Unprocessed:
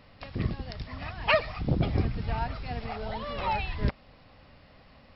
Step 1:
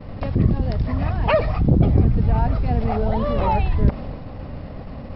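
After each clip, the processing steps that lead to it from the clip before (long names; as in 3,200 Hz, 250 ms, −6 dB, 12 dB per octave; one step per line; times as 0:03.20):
tilt shelving filter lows +10 dB, about 1,100 Hz
downward expander −40 dBFS
envelope flattener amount 50%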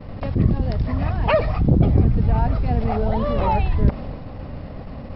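level that may rise only so fast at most 360 dB per second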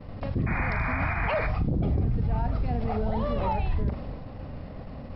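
sound drawn into the spectrogram noise, 0:00.46–0:01.47, 630–2,500 Hz −24 dBFS
flutter between parallel walls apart 7.2 metres, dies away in 0.21 s
brickwall limiter −12 dBFS, peak gain reduction 7.5 dB
level −6 dB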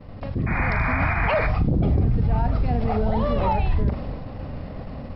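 automatic gain control gain up to 5.5 dB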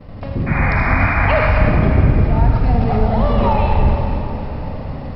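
convolution reverb RT60 3.2 s, pre-delay 48 ms, DRR 0 dB
level +4 dB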